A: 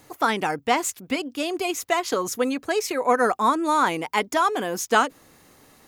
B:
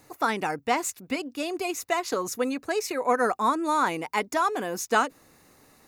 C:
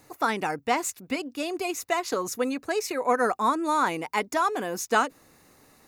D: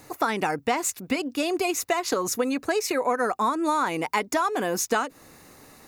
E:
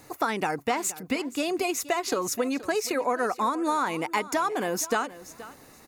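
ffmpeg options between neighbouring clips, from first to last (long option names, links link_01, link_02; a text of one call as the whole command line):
ffmpeg -i in.wav -af "bandreject=frequency=3200:width=8.7,volume=-3.5dB" out.wav
ffmpeg -i in.wav -af anull out.wav
ffmpeg -i in.wav -af "acompressor=threshold=-28dB:ratio=6,volume=7dB" out.wav
ffmpeg -i in.wav -af "aecho=1:1:475|950:0.141|0.0254,volume=-2dB" out.wav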